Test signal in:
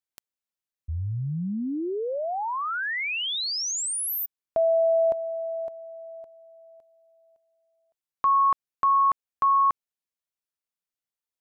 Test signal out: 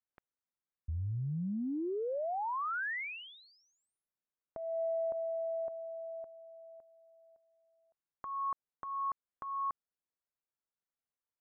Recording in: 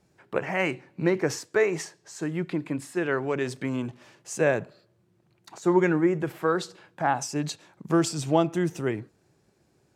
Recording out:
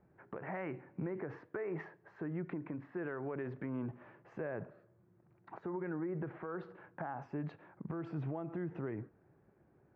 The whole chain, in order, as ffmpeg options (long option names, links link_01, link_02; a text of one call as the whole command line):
ffmpeg -i in.wav -af "lowpass=frequency=1800:width=0.5412,lowpass=frequency=1800:width=1.3066,acompressor=threshold=-33dB:ratio=4:attack=8.9:release=76:knee=6:detection=peak,alimiter=level_in=4.5dB:limit=-24dB:level=0:latency=1:release=271,volume=-4.5dB,volume=-2dB" out.wav